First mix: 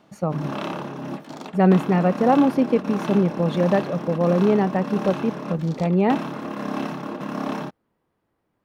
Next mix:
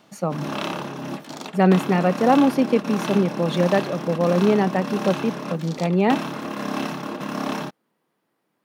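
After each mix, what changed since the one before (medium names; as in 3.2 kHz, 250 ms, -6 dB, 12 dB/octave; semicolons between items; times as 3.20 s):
speech: add high-pass 150 Hz 24 dB/octave; master: add treble shelf 2.3 kHz +9 dB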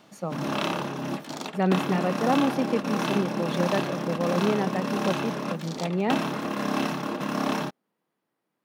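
speech -8.0 dB; reverb: on, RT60 2.0 s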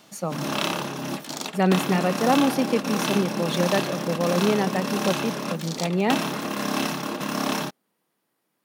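speech +3.0 dB; master: add peaking EQ 15 kHz +11 dB 2.2 oct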